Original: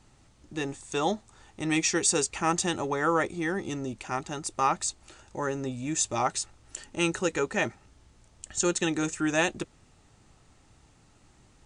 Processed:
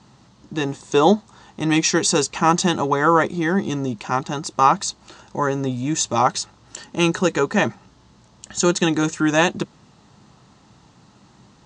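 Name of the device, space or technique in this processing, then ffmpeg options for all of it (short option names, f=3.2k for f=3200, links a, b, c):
car door speaker: -filter_complex "[0:a]asettb=1/sr,asplit=3[a][b][c];[a]atrim=end=0.744[d];[b]atrim=start=0.74:end=1.14,asetpts=PTS-STARTPTS,afade=t=in:d=0.004:c=qsin,afade=t=out:st=0.396:d=0.004:c=qsin,equalizer=f=410:w=1.5:g=6.5[e];[c]atrim=start=1.136[f];[d][e]acrossfade=d=0.004:c1=hsin:c2=qsin[g];[g][f]acrossfade=d=0.004:c1=qsin:c2=hsin,highpass=81,equalizer=f=84:t=q:w=4:g=-8,equalizer=f=130:t=q:w=4:g=4,equalizer=f=200:t=q:w=4:g=8,equalizer=f=1k:t=q:w=4:g=6,equalizer=f=2.3k:t=q:w=4:g=-5,equalizer=f=4.1k:t=q:w=4:g=3,lowpass=f=6.7k:w=0.5412,lowpass=f=6.7k:w=1.3066,volume=8dB"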